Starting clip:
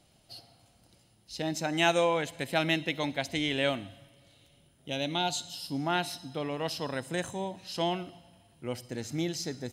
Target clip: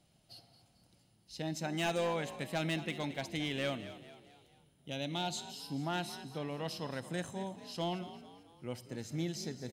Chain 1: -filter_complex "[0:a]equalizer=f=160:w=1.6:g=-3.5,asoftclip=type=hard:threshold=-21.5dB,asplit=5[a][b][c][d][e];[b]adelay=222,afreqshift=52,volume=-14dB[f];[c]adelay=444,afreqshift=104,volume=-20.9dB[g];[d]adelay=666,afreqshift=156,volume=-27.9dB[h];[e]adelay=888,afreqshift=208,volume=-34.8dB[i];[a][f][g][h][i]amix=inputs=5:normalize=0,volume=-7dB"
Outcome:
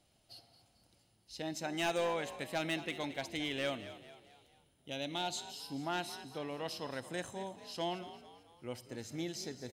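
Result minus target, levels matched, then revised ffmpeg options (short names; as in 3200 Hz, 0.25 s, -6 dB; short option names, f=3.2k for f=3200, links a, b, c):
125 Hz band -6.5 dB
-filter_complex "[0:a]equalizer=f=160:w=1.6:g=5,asoftclip=type=hard:threshold=-21.5dB,asplit=5[a][b][c][d][e];[b]adelay=222,afreqshift=52,volume=-14dB[f];[c]adelay=444,afreqshift=104,volume=-20.9dB[g];[d]adelay=666,afreqshift=156,volume=-27.9dB[h];[e]adelay=888,afreqshift=208,volume=-34.8dB[i];[a][f][g][h][i]amix=inputs=5:normalize=0,volume=-7dB"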